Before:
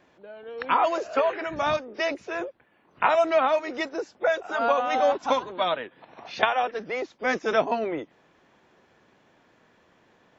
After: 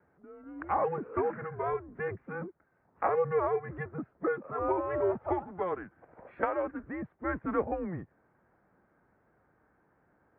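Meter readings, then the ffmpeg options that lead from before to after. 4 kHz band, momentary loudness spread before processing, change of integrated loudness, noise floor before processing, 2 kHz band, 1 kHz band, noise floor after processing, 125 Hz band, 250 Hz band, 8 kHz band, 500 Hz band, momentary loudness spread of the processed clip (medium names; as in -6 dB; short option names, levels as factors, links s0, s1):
under -35 dB, 11 LU, -7.5 dB, -63 dBFS, -12.0 dB, -9.0 dB, -71 dBFS, +6.5 dB, -2.5 dB, no reading, -6.5 dB, 12 LU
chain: -af "highpass=f=160:t=q:w=0.5412,highpass=f=160:t=q:w=1.307,lowpass=f=2000:t=q:w=0.5176,lowpass=f=2000:t=q:w=0.7071,lowpass=f=2000:t=q:w=1.932,afreqshift=-180,highpass=58,volume=0.447"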